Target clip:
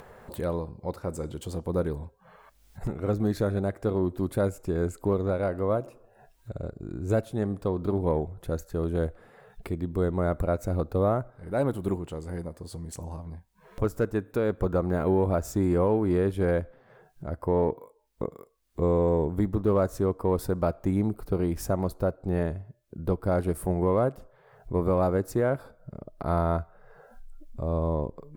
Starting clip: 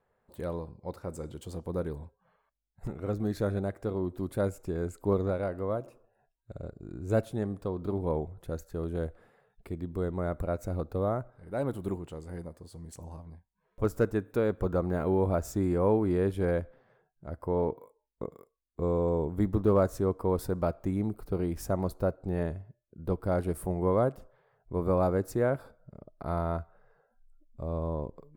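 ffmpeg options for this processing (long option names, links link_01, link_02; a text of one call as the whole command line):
ffmpeg -i in.wav -af "acompressor=mode=upward:threshold=-38dB:ratio=2.5,aeval=exprs='0.2*(cos(1*acos(clip(val(0)/0.2,-1,1)))-cos(1*PI/2))+0.00224*(cos(7*acos(clip(val(0)/0.2,-1,1)))-cos(7*PI/2))':channel_layout=same,alimiter=limit=-21dB:level=0:latency=1:release=415,volume=6dB" out.wav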